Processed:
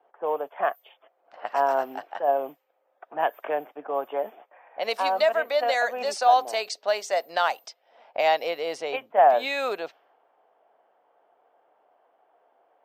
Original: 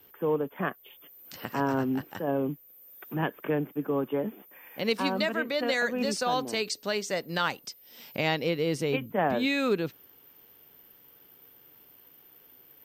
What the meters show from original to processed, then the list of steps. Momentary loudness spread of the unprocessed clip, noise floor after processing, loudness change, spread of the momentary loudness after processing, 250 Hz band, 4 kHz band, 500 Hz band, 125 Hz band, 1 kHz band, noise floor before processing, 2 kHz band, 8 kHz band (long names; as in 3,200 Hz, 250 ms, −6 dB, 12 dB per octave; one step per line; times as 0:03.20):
14 LU, −70 dBFS, +4.0 dB, 14 LU, −14.5 dB, 0.0 dB, +4.5 dB, below −20 dB, +10.0 dB, −57 dBFS, +1.5 dB, −1.0 dB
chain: high-pass with resonance 690 Hz, resonance Q 4.8
low-pass that shuts in the quiet parts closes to 970 Hz, open at −24 dBFS